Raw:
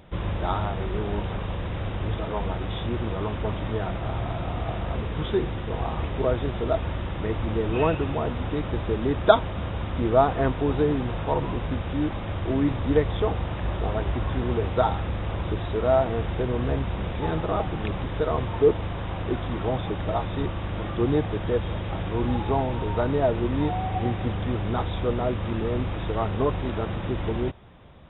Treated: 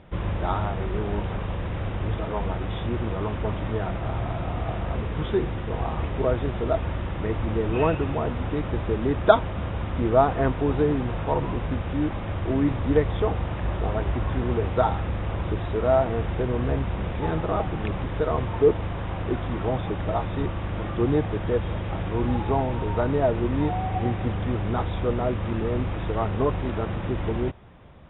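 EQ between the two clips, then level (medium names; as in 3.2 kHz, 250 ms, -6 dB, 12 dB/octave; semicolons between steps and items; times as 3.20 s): distance through air 320 m; peaking EQ 2.8 kHz +3 dB 2 oct; +1.0 dB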